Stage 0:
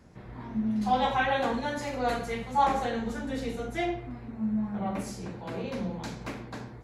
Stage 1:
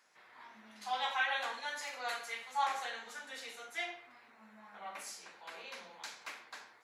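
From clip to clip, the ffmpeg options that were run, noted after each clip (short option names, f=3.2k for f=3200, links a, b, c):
-af "highpass=1.3k,volume=-1.5dB"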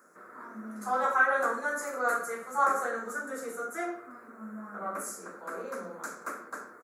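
-af "firequalizer=gain_entry='entry(130,0);entry(180,11);entry(320,11);entry(550,8);entry(840,-7);entry(1300,10);entry(1900,-9);entry(3000,-28);entry(7000,0);entry(11000,4)':delay=0.05:min_phase=1,volume=8dB"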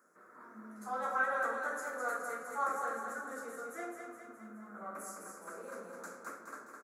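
-af "aecho=1:1:209|418|627|836|1045|1254|1463:0.562|0.304|0.164|0.0885|0.0478|0.0258|0.0139,volume=-9dB"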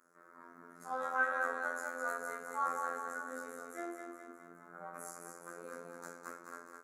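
-af "afftfilt=real='hypot(re,im)*cos(PI*b)':imag='0':win_size=2048:overlap=0.75,volume=2dB"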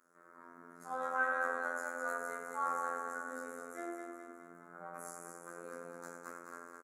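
-af "aecho=1:1:93:0.422,volume=-2dB"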